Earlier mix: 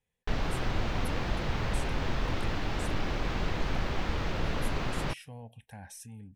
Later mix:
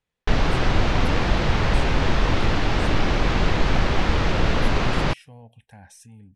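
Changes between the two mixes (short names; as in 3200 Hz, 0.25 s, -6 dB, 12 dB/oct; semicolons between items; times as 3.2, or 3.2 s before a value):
background +11.0 dB; master: add LPF 9400 Hz 12 dB/oct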